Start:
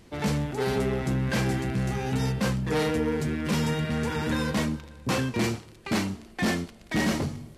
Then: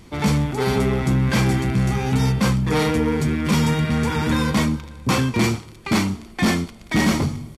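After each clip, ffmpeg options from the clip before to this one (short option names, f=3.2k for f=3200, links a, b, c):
-af "aecho=1:1:0.9:0.31,volume=6.5dB"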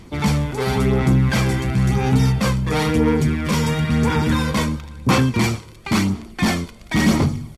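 -af "aphaser=in_gain=1:out_gain=1:delay=2:decay=0.36:speed=0.97:type=sinusoidal"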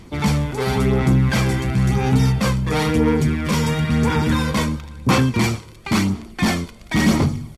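-af anull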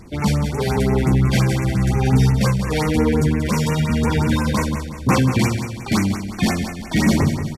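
-af "aecho=1:1:183|366|549|732|915:0.355|0.16|0.0718|0.0323|0.0145,afftfilt=real='re*(1-between(b*sr/1024,990*pow(4100/990,0.5+0.5*sin(2*PI*5.7*pts/sr))/1.41,990*pow(4100/990,0.5+0.5*sin(2*PI*5.7*pts/sr))*1.41))':imag='im*(1-between(b*sr/1024,990*pow(4100/990,0.5+0.5*sin(2*PI*5.7*pts/sr))/1.41,990*pow(4100/990,0.5+0.5*sin(2*PI*5.7*pts/sr))*1.41))':win_size=1024:overlap=0.75"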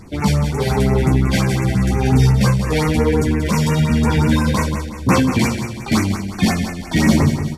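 -af "flanger=delay=9.9:depth=4.3:regen=-38:speed=0.61:shape=triangular,volume=6dB"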